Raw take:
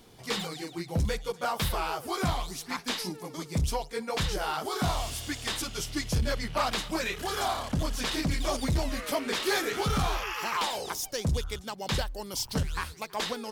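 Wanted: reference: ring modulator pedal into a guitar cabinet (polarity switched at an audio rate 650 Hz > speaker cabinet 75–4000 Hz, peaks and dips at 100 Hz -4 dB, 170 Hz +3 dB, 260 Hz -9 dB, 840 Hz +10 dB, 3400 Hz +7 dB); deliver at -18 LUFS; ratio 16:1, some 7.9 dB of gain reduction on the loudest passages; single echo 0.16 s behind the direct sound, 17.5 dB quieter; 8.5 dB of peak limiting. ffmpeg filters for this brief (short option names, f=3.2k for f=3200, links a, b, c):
-af "acompressor=threshold=-31dB:ratio=16,alimiter=level_in=7dB:limit=-24dB:level=0:latency=1,volume=-7dB,aecho=1:1:160:0.133,aeval=exprs='val(0)*sgn(sin(2*PI*650*n/s))':c=same,highpass=75,equalizer=f=100:t=q:w=4:g=-4,equalizer=f=170:t=q:w=4:g=3,equalizer=f=260:t=q:w=4:g=-9,equalizer=f=840:t=q:w=4:g=10,equalizer=f=3.4k:t=q:w=4:g=7,lowpass=f=4k:w=0.5412,lowpass=f=4k:w=1.3066,volume=18.5dB"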